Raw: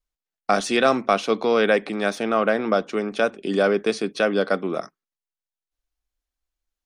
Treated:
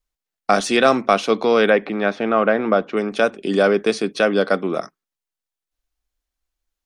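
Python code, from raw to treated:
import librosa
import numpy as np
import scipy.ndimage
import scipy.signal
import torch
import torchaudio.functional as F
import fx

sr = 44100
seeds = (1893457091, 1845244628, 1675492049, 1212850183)

y = fx.lowpass(x, sr, hz=2800.0, slope=12, at=(1.7, 2.97))
y = y * 10.0 ** (3.5 / 20.0)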